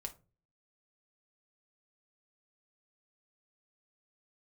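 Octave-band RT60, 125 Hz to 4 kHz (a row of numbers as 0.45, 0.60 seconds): 0.60, 0.50, 0.40, 0.25, 0.20, 0.20 seconds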